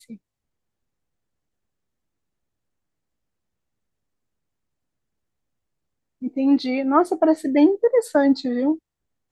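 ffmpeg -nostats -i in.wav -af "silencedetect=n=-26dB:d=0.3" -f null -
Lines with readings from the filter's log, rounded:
silence_start: 0.00
silence_end: 6.23 | silence_duration: 6.23
silence_start: 8.75
silence_end: 9.31 | silence_duration: 0.57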